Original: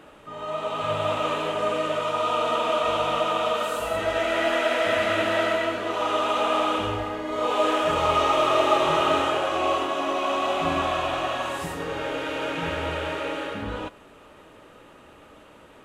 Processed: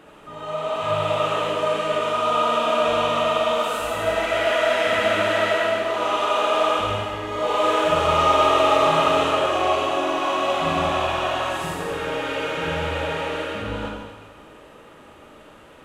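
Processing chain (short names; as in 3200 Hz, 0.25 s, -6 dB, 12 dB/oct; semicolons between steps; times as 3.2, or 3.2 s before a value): Schroeder reverb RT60 1.4 s, DRR -0.5 dB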